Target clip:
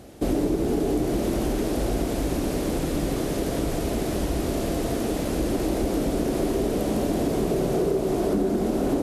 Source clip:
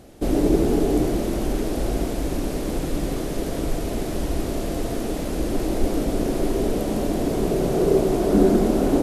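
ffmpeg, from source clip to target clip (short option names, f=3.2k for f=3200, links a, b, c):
-filter_complex "[0:a]highpass=42,acompressor=threshold=-21dB:ratio=10,asplit=2[a][b];[b]asoftclip=type=hard:threshold=-20dB,volume=-4dB[c];[a][c]amix=inputs=2:normalize=0,volume=-2.5dB"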